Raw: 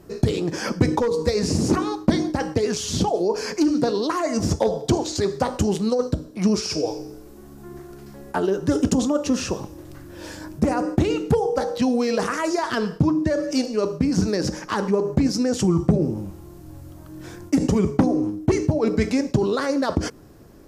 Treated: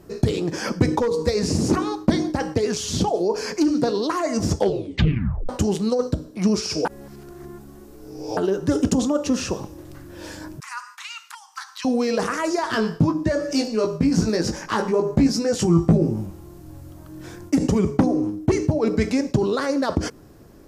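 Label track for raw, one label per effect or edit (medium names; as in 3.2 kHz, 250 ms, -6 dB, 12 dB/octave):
4.560000	4.560000	tape stop 0.93 s
6.850000	8.370000	reverse
10.600000	11.850000	steep high-pass 1 kHz 72 dB/octave
12.680000	16.260000	doubling 18 ms -3.5 dB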